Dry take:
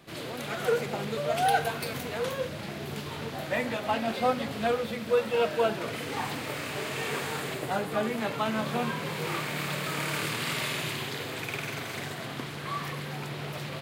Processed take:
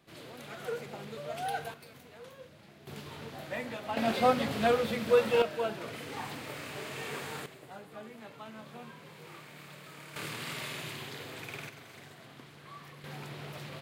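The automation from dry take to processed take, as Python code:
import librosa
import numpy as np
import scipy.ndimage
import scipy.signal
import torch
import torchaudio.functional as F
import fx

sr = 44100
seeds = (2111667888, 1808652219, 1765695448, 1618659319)

y = fx.gain(x, sr, db=fx.steps((0.0, -10.5), (1.74, -18.5), (2.87, -8.0), (3.97, 1.0), (5.42, -7.0), (7.46, -17.5), (10.16, -8.0), (11.69, -15.0), (13.04, -7.0)))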